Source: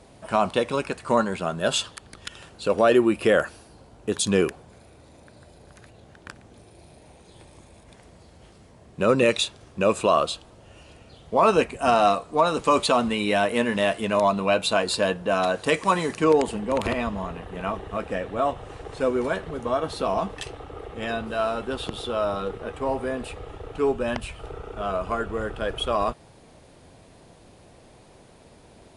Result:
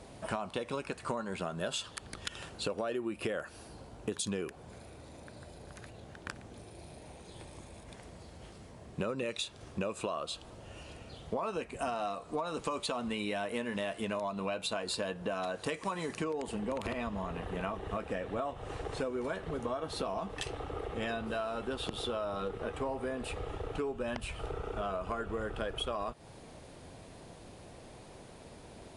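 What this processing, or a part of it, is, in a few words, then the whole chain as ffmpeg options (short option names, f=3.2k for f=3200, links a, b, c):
serial compression, leveller first: -af "acompressor=threshold=-22dB:ratio=2,acompressor=threshold=-33dB:ratio=6"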